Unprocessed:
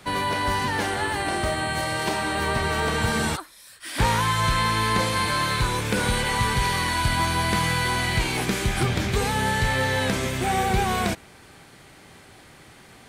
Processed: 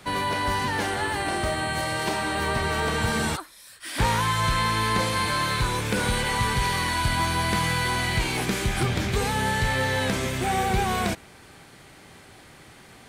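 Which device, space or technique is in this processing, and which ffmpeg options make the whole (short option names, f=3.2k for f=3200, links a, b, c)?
parallel distortion: -filter_complex "[0:a]asplit=2[a][b];[b]asoftclip=type=hard:threshold=-30dB,volume=-12dB[c];[a][c]amix=inputs=2:normalize=0,volume=-2dB"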